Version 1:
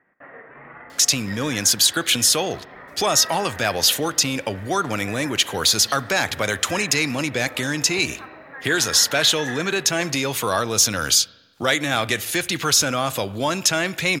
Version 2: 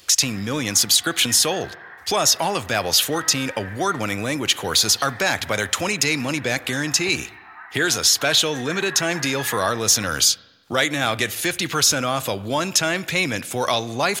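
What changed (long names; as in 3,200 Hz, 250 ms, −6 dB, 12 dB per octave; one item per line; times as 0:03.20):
speech: entry −0.90 s
background: add linear-phase brick-wall high-pass 670 Hz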